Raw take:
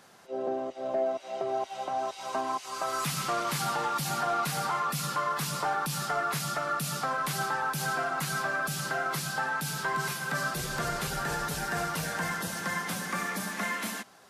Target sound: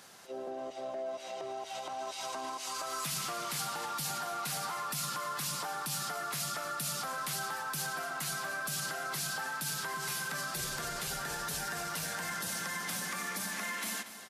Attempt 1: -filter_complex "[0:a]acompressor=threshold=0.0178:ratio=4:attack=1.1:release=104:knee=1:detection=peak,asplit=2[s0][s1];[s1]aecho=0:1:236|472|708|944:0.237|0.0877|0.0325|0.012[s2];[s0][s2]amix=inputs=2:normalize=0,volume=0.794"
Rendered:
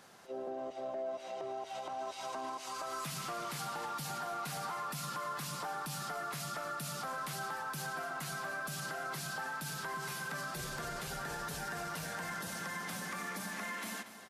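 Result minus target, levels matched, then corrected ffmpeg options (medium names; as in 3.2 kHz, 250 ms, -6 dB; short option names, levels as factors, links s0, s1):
4 kHz band -2.5 dB
-filter_complex "[0:a]acompressor=threshold=0.0178:ratio=4:attack=1.1:release=104:knee=1:detection=peak,highshelf=f=2300:g=8.5,asplit=2[s0][s1];[s1]aecho=0:1:236|472|708|944:0.237|0.0877|0.0325|0.012[s2];[s0][s2]amix=inputs=2:normalize=0,volume=0.794"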